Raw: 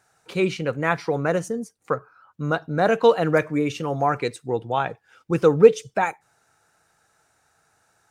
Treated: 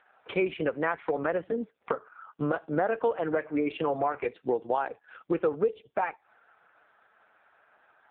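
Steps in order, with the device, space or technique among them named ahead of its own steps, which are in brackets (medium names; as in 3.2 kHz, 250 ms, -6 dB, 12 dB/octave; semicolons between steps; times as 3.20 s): voicemail (band-pass 320–3200 Hz; compression 6:1, threshold -32 dBFS, peak gain reduction 23 dB; trim +8 dB; AMR-NB 4.75 kbps 8 kHz)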